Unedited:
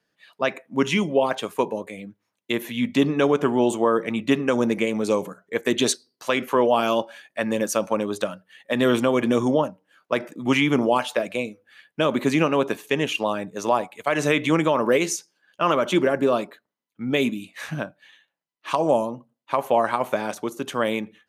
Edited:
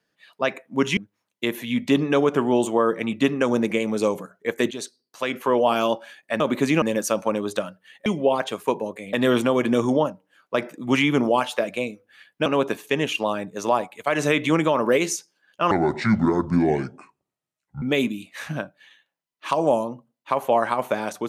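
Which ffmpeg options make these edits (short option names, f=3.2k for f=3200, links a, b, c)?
-filter_complex "[0:a]asplit=10[a][b][c][d][e][f][g][h][i][j];[a]atrim=end=0.972[k];[b]atrim=start=2.038:end=5.78,asetpts=PTS-STARTPTS,afade=t=out:st=3.738:d=0.004:c=hsin:silence=0.188365[l];[c]atrim=start=5.78:end=7.472,asetpts=PTS-STARTPTS,afade=t=in:d=0.95:silence=0.188365[m];[d]atrim=start=12.038:end=12.462[n];[e]atrim=start=7.468:end=8.712[o];[f]atrim=start=0.968:end=2.042[p];[g]atrim=start=8.708:end=12.042[q];[h]atrim=start=12.458:end=15.714[r];[i]atrim=start=15.71:end=17.04,asetpts=PTS-STARTPTS,asetrate=27783,aresample=44100[s];[j]atrim=start=17.036[t];[l][m]concat=n=2:v=0:a=1[u];[k][u]acrossfade=d=0.004:c1=hsin:c2=hsin[v];[v][n]acrossfade=d=0.004:c1=hsin:c2=hsin[w];[w][o]acrossfade=d=0.004:c1=hsin:c2=hsin[x];[x][p]acrossfade=d=0.004:c1=hsin:c2=hsin[y];[y][q]acrossfade=d=0.004:c1=hsin:c2=hsin[z];[z][r]acrossfade=d=0.004:c1=hsin:c2=hsin[aa];[aa][s]acrossfade=d=0.004:c1=hsin:c2=hsin[ab];[ab][t]acrossfade=d=0.004:c1=hsin:c2=hsin"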